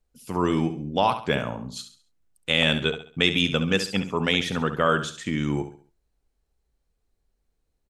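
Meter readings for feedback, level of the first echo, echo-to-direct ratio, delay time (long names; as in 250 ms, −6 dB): 35%, −10.5 dB, −10.0 dB, 68 ms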